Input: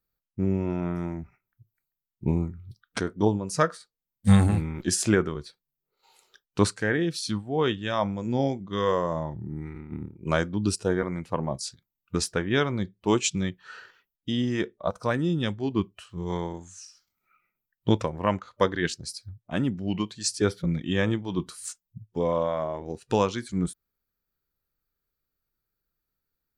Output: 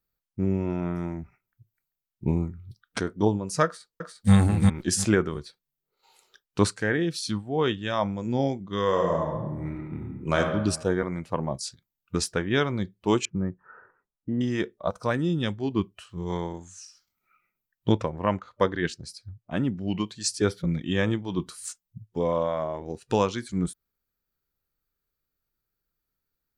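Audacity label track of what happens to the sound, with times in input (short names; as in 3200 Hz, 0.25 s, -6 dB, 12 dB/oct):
3.650000	4.340000	echo throw 0.35 s, feedback 20%, level -2 dB
8.870000	10.380000	reverb throw, RT60 1.2 s, DRR 1 dB
13.250000	14.410000	inverse Chebyshev low-pass stop band from 3400 Hz, stop band 50 dB
17.920000	19.810000	high shelf 3900 Hz -8 dB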